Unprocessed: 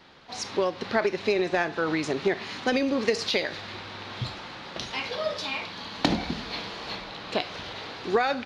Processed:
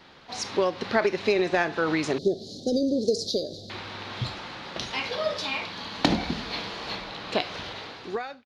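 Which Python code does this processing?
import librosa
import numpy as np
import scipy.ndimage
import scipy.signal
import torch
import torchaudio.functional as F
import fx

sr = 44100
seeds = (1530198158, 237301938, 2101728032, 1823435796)

y = fx.fade_out_tail(x, sr, length_s=0.83)
y = fx.cheby2_bandstop(y, sr, low_hz=930.0, high_hz=2700.0, order=4, stop_db=40, at=(2.18, 3.7))
y = y * librosa.db_to_amplitude(1.5)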